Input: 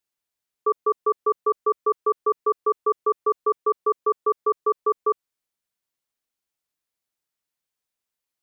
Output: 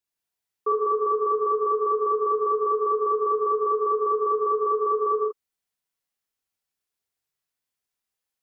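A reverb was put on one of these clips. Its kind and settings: non-linear reverb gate 0.21 s flat, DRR -3 dB; gain -5 dB

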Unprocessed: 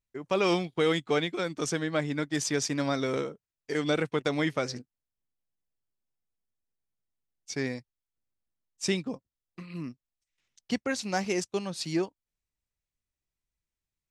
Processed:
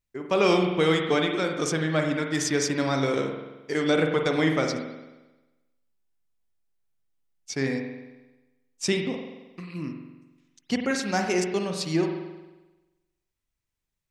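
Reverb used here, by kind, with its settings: spring tank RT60 1.1 s, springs 44 ms, chirp 70 ms, DRR 3 dB; gain +3 dB

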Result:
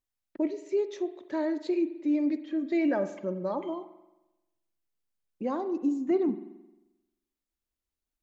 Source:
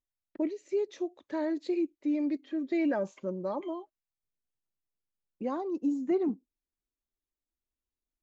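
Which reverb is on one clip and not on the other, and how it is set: spring tank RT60 1 s, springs 44 ms, chirp 35 ms, DRR 11.5 dB; gain +2 dB

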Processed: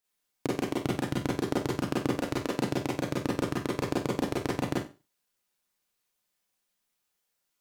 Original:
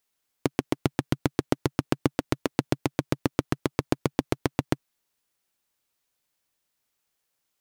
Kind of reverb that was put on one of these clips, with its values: Schroeder reverb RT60 0.3 s, combs from 31 ms, DRR -5 dB; gain -7.5 dB

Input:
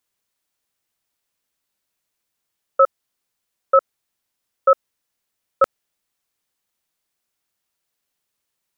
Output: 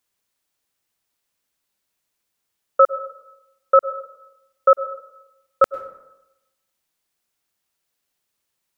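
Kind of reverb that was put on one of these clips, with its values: plate-style reverb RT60 0.93 s, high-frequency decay 0.55×, pre-delay 90 ms, DRR 15 dB; gain +1 dB

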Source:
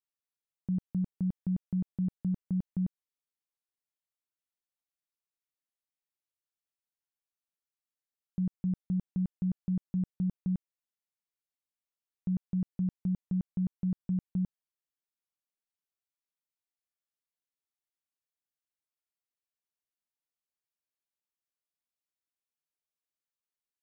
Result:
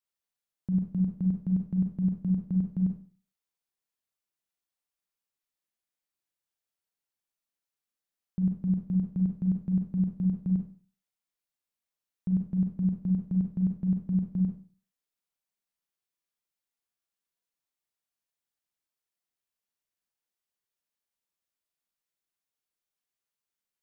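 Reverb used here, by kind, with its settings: Schroeder reverb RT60 0.4 s, combs from 32 ms, DRR 2.5 dB; gain +1 dB

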